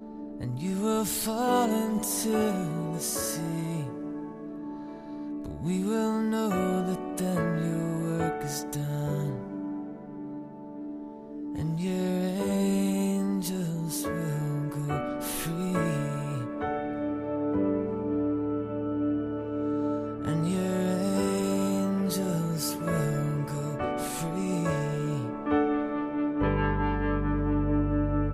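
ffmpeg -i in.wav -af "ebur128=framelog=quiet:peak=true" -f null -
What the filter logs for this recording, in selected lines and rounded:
Integrated loudness:
  I:         -29.4 LUFS
  Threshold: -39.6 LUFS
Loudness range:
  LRA:         4.6 LU
  Threshold: -49.8 LUFS
  LRA low:   -32.6 LUFS
  LRA high:  -28.0 LUFS
True peak:
  Peak:      -13.9 dBFS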